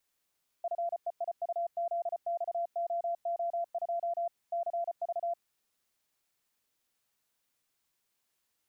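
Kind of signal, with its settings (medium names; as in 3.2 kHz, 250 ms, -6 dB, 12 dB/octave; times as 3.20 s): Morse "FEIUZXOO2 CV" 34 wpm 685 Hz -29.5 dBFS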